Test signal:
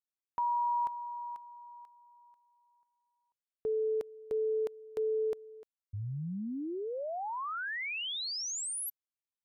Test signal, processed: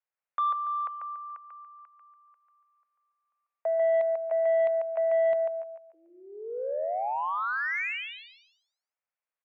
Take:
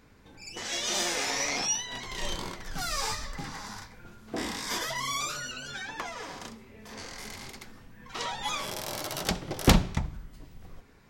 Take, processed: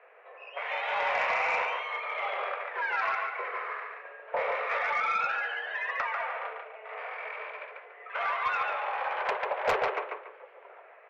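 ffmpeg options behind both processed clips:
ffmpeg -i in.wav -filter_complex "[0:a]asoftclip=type=tanh:threshold=-18.5dB,highpass=frequency=270:width_type=q:width=0.5412,highpass=frequency=270:width_type=q:width=1.307,lowpass=frequency=2300:width_type=q:width=0.5176,lowpass=frequency=2300:width_type=q:width=0.7071,lowpass=frequency=2300:width_type=q:width=1.932,afreqshift=220,asplit=2[link_01][link_02];[link_02]aecho=0:1:143|286|429|572:0.631|0.189|0.0568|0.017[link_03];[link_01][link_03]amix=inputs=2:normalize=0,aeval=exprs='0.158*(cos(1*acos(clip(val(0)/0.158,-1,1)))-cos(1*PI/2))+0.0316*(cos(5*acos(clip(val(0)/0.158,-1,1)))-cos(5*PI/2))':channel_layout=same" out.wav

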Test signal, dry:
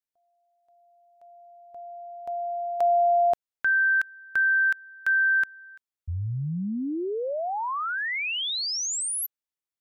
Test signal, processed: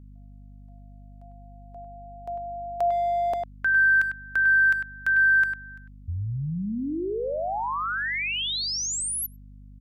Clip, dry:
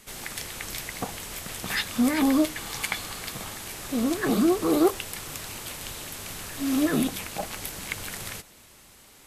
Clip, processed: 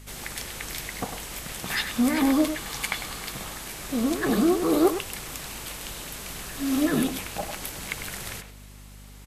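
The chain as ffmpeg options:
ffmpeg -i in.wav -filter_complex "[0:a]asplit=2[link_01][link_02];[link_02]adelay=100,highpass=300,lowpass=3400,asoftclip=type=hard:threshold=-19dB,volume=-7dB[link_03];[link_01][link_03]amix=inputs=2:normalize=0,aeval=exprs='val(0)+0.00562*(sin(2*PI*50*n/s)+sin(2*PI*2*50*n/s)/2+sin(2*PI*3*50*n/s)/3+sin(2*PI*4*50*n/s)/4+sin(2*PI*5*50*n/s)/5)':channel_layout=same" out.wav

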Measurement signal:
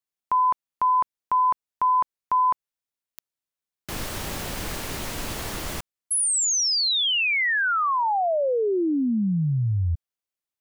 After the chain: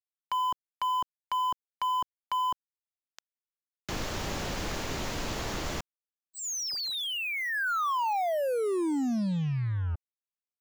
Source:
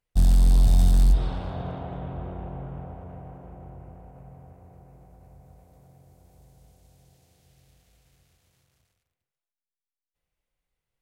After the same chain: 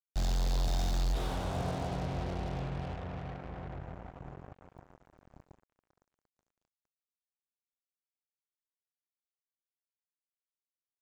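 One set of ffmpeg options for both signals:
ffmpeg -i in.wav -filter_complex "[0:a]acrossover=split=270|1100[link_01][link_02][link_03];[link_01]acompressor=threshold=-33dB:ratio=2.5[link_04];[link_02]acompressor=threshold=-31dB:ratio=2.5[link_05];[link_03]acompressor=threshold=-34dB:ratio=6[link_06];[link_04][link_05][link_06]amix=inputs=3:normalize=0,aresample=16000,asoftclip=type=hard:threshold=-26.5dB,aresample=44100,acrusher=bits=6:mix=0:aa=0.5" out.wav

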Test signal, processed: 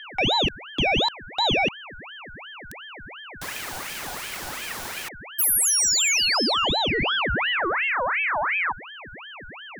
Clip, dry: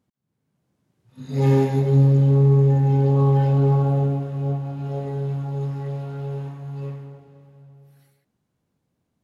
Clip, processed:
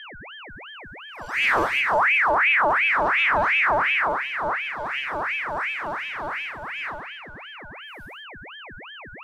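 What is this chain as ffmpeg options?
ffmpeg -i in.wav -af "highshelf=frequency=2200:gain=5,asoftclip=type=tanh:threshold=-14dB,aeval=exprs='0.2*(cos(1*acos(clip(val(0)/0.2,-1,1)))-cos(1*PI/2))+0.00141*(cos(2*acos(clip(val(0)/0.2,-1,1)))-cos(2*PI/2))':channel_layout=same,aeval=exprs='val(0)+0.0158*sin(2*PI*720*n/s)':channel_layout=same,aeval=exprs='val(0)*sin(2*PI*1600*n/s+1600*0.55/2.8*sin(2*PI*2.8*n/s))':channel_layout=same,volume=1.5dB" out.wav

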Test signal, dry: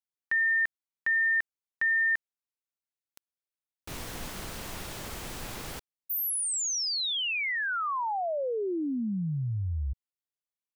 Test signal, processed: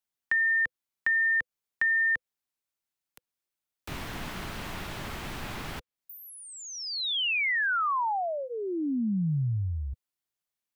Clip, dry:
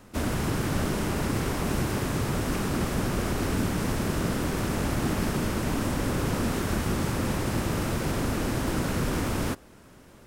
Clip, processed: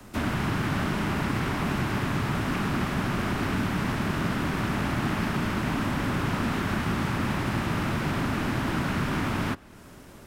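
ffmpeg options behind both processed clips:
ffmpeg -i in.wav -filter_complex "[0:a]equalizer=frequency=14000:width=5.3:gain=3.5,bandreject=frequency=500:width=12,acrossover=split=100|330|680|3800[link_01][link_02][link_03][link_04][link_05];[link_01]acompressor=threshold=-44dB:ratio=4[link_06];[link_02]acompressor=threshold=-30dB:ratio=4[link_07];[link_03]acompressor=threshold=-56dB:ratio=4[link_08];[link_04]acompressor=threshold=-29dB:ratio=4[link_09];[link_05]acompressor=threshold=-56dB:ratio=4[link_10];[link_06][link_07][link_08][link_09][link_10]amix=inputs=5:normalize=0,volume=4.5dB" out.wav

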